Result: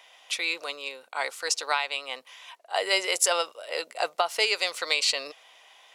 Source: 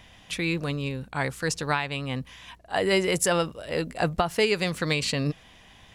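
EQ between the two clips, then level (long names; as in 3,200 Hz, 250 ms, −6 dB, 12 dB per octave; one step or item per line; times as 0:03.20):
high-pass filter 530 Hz 24 dB per octave
notch filter 1,700 Hz, Q 8.8
dynamic equaliser 5,000 Hz, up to +6 dB, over −43 dBFS, Q 0.83
0.0 dB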